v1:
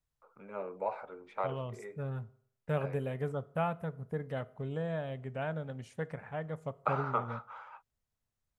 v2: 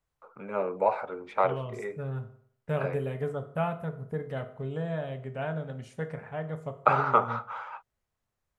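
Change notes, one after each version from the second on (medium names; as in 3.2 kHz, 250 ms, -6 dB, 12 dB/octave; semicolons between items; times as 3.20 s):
first voice +10.0 dB; second voice: send +11.5 dB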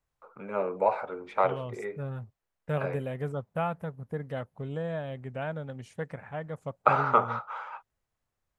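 second voice +3.0 dB; reverb: off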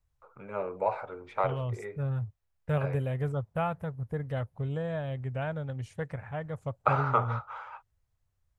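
first voice -3.5 dB; master: add resonant low shelf 140 Hz +9.5 dB, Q 1.5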